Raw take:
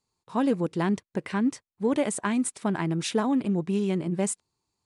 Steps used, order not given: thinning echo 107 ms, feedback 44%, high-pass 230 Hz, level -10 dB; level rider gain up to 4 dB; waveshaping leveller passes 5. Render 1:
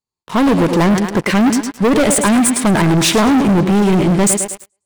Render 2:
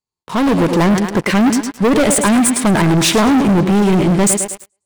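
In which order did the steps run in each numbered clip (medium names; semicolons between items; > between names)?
thinning echo > level rider > waveshaping leveller; thinning echo > waveshaping leveller > level rider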